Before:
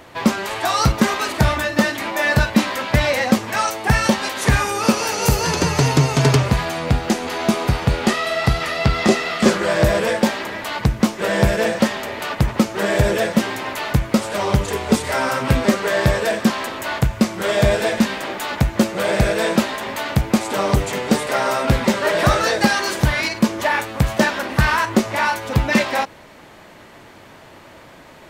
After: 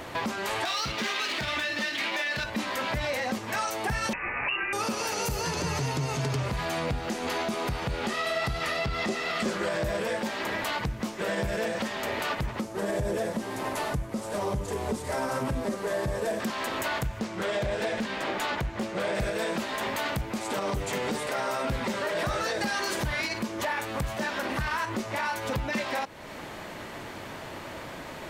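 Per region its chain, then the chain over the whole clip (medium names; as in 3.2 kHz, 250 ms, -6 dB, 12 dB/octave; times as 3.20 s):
0.65–2.44 s: median filter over 5 samples + frequency weighting D
4.13–4.73 s: distance through air 170 m + frequency inversion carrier 2.8 kHz
12.61–16.40 s: CVSD coder 64 kbps + peaking EQ 2.7 kHz -9 dB 2.2 oct + band-stop 1.4 kHz, Q 25
17.19–19.15 s: treble shelf 9.7 kHz -10.5 dB + loudspeaker Doppler distortion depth 0.52 ms
whole clip: compression 2.5:1, threshold -33 dBFS; peak limiter -24 dBFS; trim +3.5 dB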